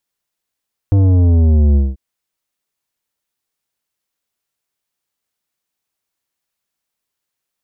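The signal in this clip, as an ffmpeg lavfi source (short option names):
-f lavfi -i "aevalsrc='0.355*clip((1.04-t)/0.2,0,1)*tanh(3.55*sin(2*PI*100*1.04/log(65/100)*(exp(log(65/100)*t/1.04)-1)))/tanh(3.55)':d=1.04:s=44100"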